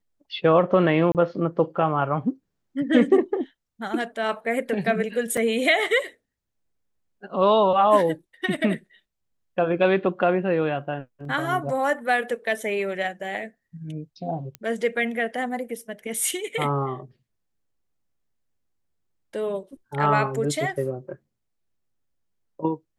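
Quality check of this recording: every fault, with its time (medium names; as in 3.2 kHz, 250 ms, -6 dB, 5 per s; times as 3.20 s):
1.12–1.15 s: dropout 28 ms
5.37 s: dropout 4.5 ms
14.55 s: pop -19 dBFS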